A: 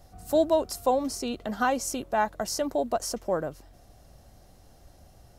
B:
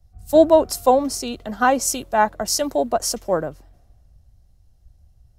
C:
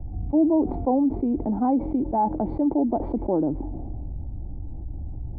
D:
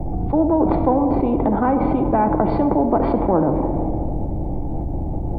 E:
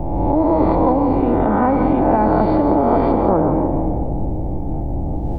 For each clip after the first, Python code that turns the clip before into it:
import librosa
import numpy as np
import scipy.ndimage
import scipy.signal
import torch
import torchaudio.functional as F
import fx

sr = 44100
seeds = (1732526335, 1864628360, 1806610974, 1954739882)

y1 = fx.band_widen(x, sr, depth_pct=70)
y1 = y1 * 10.0 ** (6.5 / 20.0)
y2 = fx.formant_cascade(y1, sr, vowel='u')
y2 = fx.env_flatten(y2, sr, amount_pct=70)
y3 = fx.room_shoebox(y2, sr, seeds[0], volume_m3=1800.0, walls='mixed', distance_m=0.72)
y3 = fx.spectral_comp(y3, sr, ratio=2.0)
y3 = y3 * 10.0 ** (4.5 / 20.0)
y4 = fx.spec_swells(y3, sr, rise_s=1.28)
y4 = y4 + 10.0 ** (-8.5 / 20.0) * np.pad(y4, (int(171 * sr / 1000.0), 0))[:len(y4)]
y4 = y4 * 10.0 ** (-1.0 / 20.0)